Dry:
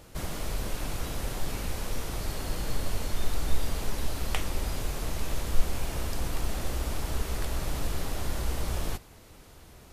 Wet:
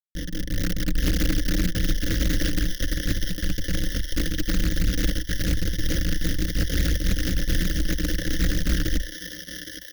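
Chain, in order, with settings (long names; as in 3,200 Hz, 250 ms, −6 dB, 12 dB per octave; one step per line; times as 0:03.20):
comparator with hysteresis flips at −34.5 dBFS
Chebyshev band-stop filter 520–1,800 Hz, order 2
brickwall limiter −25.5 dBFS, peak gain reduction 8.5 dB
high-shelf EQ 5,500 Hz +11 dB
phaser with its sweep stopped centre 2,500 Hz, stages 6
comb filter 4 ms, depth 48%
feedback echo with a high-pass in the loop 816 ms, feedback 67%, high-pass 750 Hz, level −5 dB
convolution reverb, pre-delay 7 ms, DRR 20 dB
automatic gain control gain up to 8 dB
EQ curve with evenly spaced ripples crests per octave 1.2, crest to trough 15 dB
highs frequency-modulated by the lows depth 0.48 ms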